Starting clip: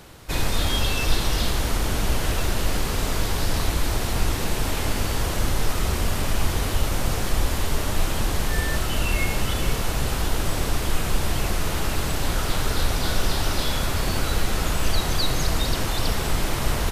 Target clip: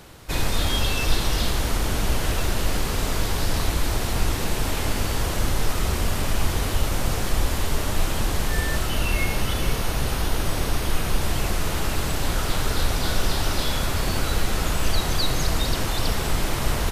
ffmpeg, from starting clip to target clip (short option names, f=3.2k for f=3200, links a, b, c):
-filter_complex "[0:a]asettb=1/sr,asplit=3[a][b][c];[a]atrim=end=8.894[d];[b]atrim=start=8.89:end=11.21,asetpts=PTS-STARTPTS,afade=t=in:d=0.004:c=qsin,afade=t=out:st=2.316:d=0.004:c=qsin,bandreject=f=7.5k:w=9.3[e];[c]atrim=start=11.206[f];[d][e]acrossfade=d=0.004:c1=hsin:c2=qsin[g];[g][f]acrossfade=d=0.004:c1=qsin:c2=hsin"